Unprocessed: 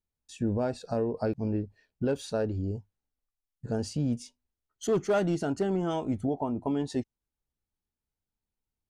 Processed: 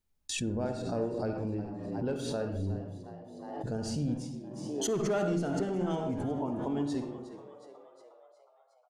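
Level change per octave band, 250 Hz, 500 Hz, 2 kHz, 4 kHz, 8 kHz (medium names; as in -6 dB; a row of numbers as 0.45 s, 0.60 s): -2.0 dB, -3.0 dB, -1.5 dB, +2.5 dB, +4.5 dB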